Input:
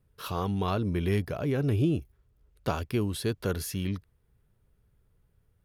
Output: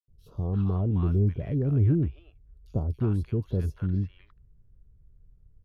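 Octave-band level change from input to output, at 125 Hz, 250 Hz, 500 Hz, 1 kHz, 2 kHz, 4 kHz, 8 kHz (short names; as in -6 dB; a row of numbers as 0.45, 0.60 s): +5.5 dB, +1.0 dB, -3.5 dB, -10.5 dB, under -10 dB, under -15 dB, under -20 dB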